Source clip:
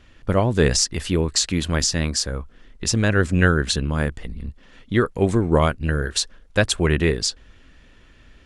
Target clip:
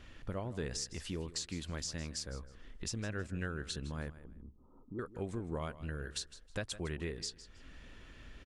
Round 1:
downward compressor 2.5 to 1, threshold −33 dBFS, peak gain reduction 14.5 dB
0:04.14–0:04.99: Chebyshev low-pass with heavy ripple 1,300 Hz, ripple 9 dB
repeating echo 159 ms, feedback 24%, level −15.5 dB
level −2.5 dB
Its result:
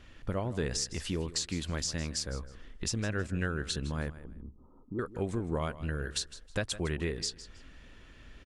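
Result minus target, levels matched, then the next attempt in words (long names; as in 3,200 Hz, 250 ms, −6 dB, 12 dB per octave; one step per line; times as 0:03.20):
downward compressor: peak gain reduction −6.5 dB
downward compressor 2.5 to 1, threshold −43.5 dBFS, peak gain reduction 20.5 dB
0:04.14–0:04.99: Chebyshev low-pass with heavy ripple 1,300 Hz, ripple 9 dB
repeating echo 159 ms, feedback 24%, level −15.5 dB
level −2.5 dB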